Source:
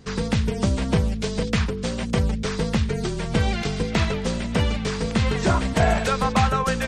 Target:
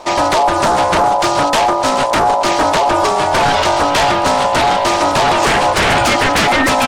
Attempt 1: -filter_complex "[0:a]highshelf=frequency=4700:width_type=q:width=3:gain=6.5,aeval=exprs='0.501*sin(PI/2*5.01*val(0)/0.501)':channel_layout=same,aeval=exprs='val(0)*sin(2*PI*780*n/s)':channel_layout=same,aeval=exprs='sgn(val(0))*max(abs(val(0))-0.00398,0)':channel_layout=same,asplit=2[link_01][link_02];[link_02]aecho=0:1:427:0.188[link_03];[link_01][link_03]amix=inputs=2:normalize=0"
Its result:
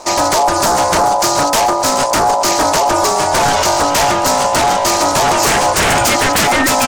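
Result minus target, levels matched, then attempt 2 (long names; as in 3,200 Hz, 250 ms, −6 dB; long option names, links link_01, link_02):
8,000 Hz band +8.0 dB
-filter_complex "[0:a]aeval=exprs='0.501*sin(PI/2*5.01*val(0)/0.501)':channel_layout=same,aeval=exprs='val(0)*sin(2*PI*780*n/s)':channel_layout=same,aeval=exprs='sgn(val(0))*max(abs(val(0))-0.00398,0)':channel_layout=same,asplit=2[link_01][link_02];[link_02]aecho=0:1:427:0.188[link_03];[link_01][link_03]amix=inputs=2:normalize=0"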